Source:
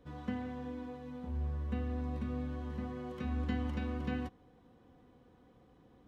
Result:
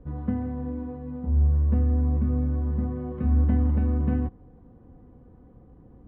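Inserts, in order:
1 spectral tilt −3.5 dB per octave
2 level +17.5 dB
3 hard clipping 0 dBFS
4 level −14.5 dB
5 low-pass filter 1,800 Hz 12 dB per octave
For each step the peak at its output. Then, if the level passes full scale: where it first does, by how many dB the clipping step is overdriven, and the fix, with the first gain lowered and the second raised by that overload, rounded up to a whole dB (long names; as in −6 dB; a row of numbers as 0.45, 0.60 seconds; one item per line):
−14.0, +3.5, 0.0, −14.5, −14.5 dBFS
step 2, 3.5 dB
step 2 +13.5 dB, step 4 −10.5 dB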